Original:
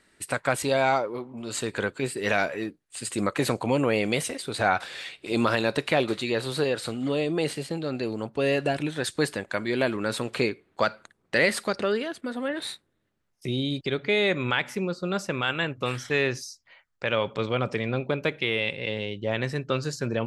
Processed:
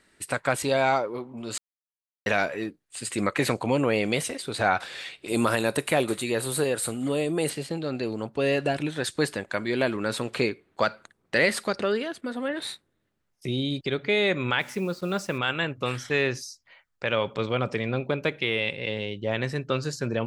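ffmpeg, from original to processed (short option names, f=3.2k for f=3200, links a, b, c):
-filter_complex "[0:a]asettb=1/sr,asplit=3[a][b][c];[a]atrim=end=3.084[d];[b]atrim=start=3.08:end=3.54,asetpts=PTS-STARTPTS,afade=t=in:d=0.004:c=qsin,afade=t=out:st=0.456:d=0.004:c=qsin,equalizer=f=2.1k:t=o:w=0.64:g=6[e];[c]atrim=start=3.536[f];[d][e]acrossfade=d=0.004:c1=hsin:c2=qsin[g];[g][f]acrossfade=d=0.004:c1=qsin:c2=hsin,asettb=1/sr,asplit=3[h][i][j];[h]atrim=end=5.284[k];[i]atrim=start=5.28:end=7.5,asetpts=PTS-STARTPTS,afade=t=in:d=0.004:c=qsin,afade=t=out:st=2.216:d=0.004:c=qsin,highshelf=f=6.9k:t=q:w=1.5:g=11.5[l];[j]atrim=start=7.496[m];[k][l]acrossfade=d=0.004:c1=hsin:c2=qsin[n];[n][m]acrossfade=d=0.004:c1=qsin:c2=hsin,asplit=3[o][p][q];[o]afade=t=out:st=14.59:d=0.02[r];[p]acrusher=bits=7:mix=0:aa=0.5,afade=t=in:st=14.59:d=0.02,afade=t=out:st=15.37:d=0.02[s];[q]afade=t=in:st=15.37:d=0.02[t];[r][s][t]amix=inputs=3:normalize=0,asplit=3[u][v][w];[u]atrim=end=1.58,asetpts=PTS-STARTPTS,afade=t=out:st=1.576:d=0.004:c=hsin[x];[v]atrim=start=1.58:end=2.26,asetpts=PTS-STARTPTS,volume=0[y];[w]atrim=start=2.26,asetpts=PTS-STARTPTS,afade=t=in:d=0.004:c=hsin[z];[x][y][z]concat=n=3:v=0:a=1"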